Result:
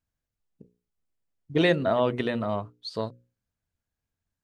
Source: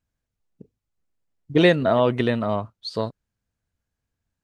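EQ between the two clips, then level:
mains-hum notches 60/120/180/240/300/360/420/480/540 Hz
−4.5 dB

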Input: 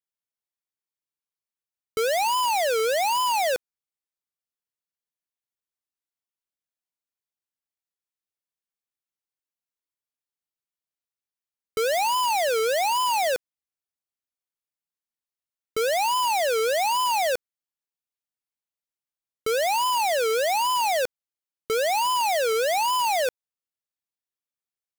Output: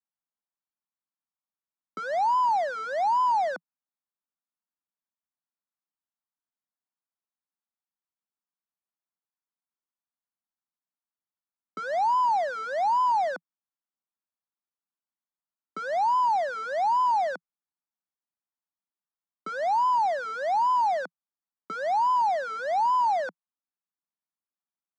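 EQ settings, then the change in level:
Butterworth high-pass 170 Hz 72 dB per octave
head-to-tape spacing loss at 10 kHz 36 dB
phaser with its sweep stopped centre 1,100 Hz, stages 4
+5.0 dB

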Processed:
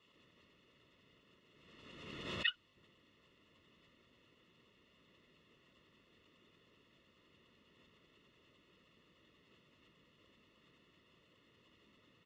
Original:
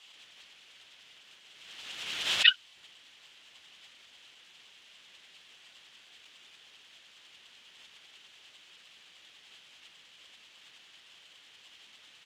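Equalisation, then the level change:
moving average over 56 samples
+7.5 dB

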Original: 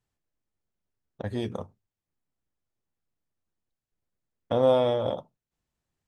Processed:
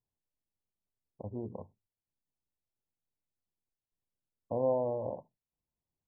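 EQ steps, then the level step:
linear-phase brick-wall low-pass 1,100 Hz
−8.5 dB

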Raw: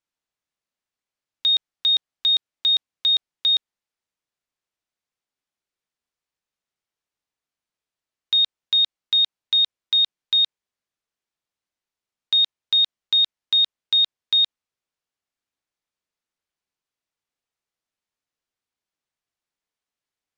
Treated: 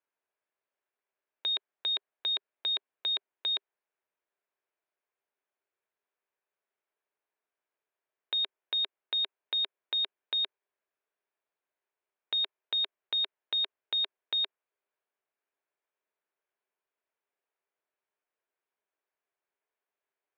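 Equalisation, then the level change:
high-frequency loss of the air 410 metres
loudspeaker in its box 380–4,200 Hz, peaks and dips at 400 Hz +9 dB, 620 Hz +6 dB, 960 Hz +4 dB, 1,600 Hz +5 dB, 2,400 Hz +4 dB
0.0 dB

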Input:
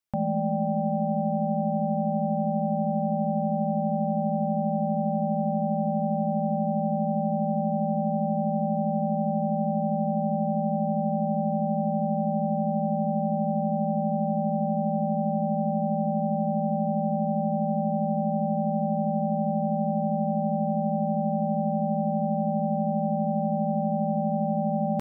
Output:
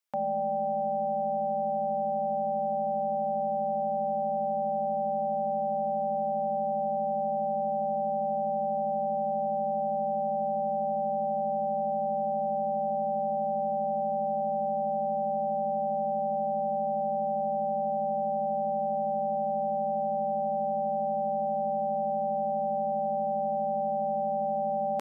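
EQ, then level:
high-pass filter 490 Hz 12 dB per octave
+1.5 dB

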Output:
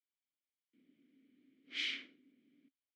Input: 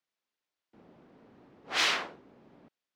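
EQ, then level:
formant filter i
high-shelf EQ 2,800 Hz +11.5 dB
−4.5 dB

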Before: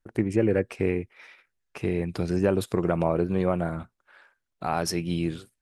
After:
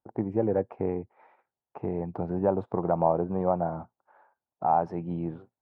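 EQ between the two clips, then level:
high-pass filter 94 Hz
low-pass with resonance 840 Hz, resonance Q 4
dynamic equaliser 360 Hz, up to −3 dB, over −32 dBFS
−4.0 dB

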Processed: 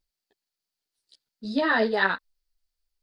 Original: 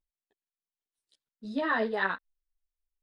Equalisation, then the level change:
parametric band 4,600 Hz +11 dB 0.4 octaves
notch filter 1,100 Hz, Q 11
+6.0 dB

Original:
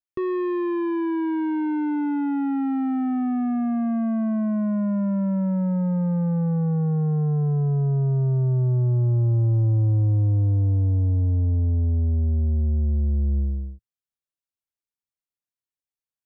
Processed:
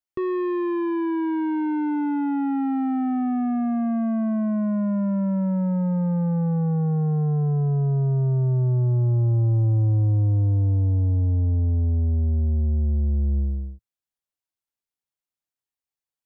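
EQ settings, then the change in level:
parametric band 800 Hz +3 dB 0.44 octaves
0.0 dB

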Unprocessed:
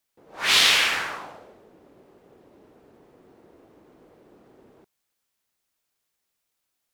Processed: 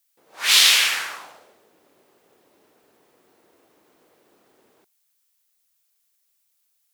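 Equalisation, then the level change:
spectral tilt +3.5 dB per octave
−3.0 dB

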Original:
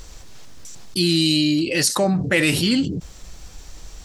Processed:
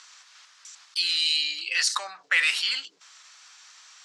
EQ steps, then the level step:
Chebyshev high-pass filter 1,200 Hz, order 3
low-pass filter 9,300 Hz 12 dB per octave
high-frequency loss of the air 64 metres
+1.0 dB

